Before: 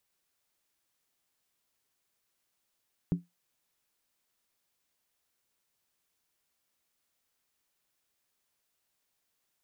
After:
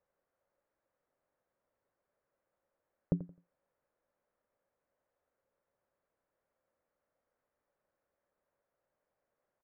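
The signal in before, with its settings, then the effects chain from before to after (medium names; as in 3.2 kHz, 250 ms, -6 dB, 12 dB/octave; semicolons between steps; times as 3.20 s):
skin hit, lowest mode 174 Hz, decay 0.18 s, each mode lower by 9 dB, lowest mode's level -20.5 dB
low-pass 1.7 kHz 24 dB/octave; peaking EQ 550 Hz +13 dB 0.49 oct; feedback delay 86 ms, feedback 25%, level -15 dB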